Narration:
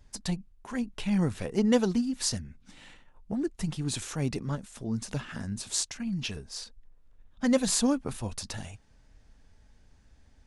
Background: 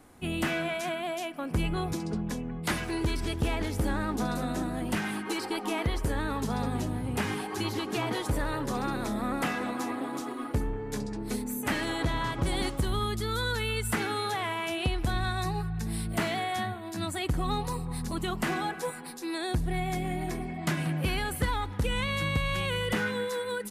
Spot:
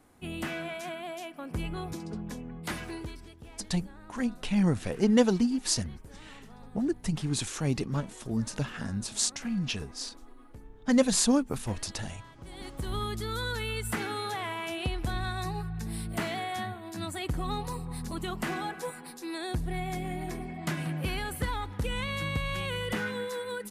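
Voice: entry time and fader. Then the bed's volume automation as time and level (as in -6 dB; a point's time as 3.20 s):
3.45 s, +1.5 dB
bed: 2.89 s -5.5 dB
3.36 s -20.5 dB
12.36 s -20.5 dB
12.95 s -3 dB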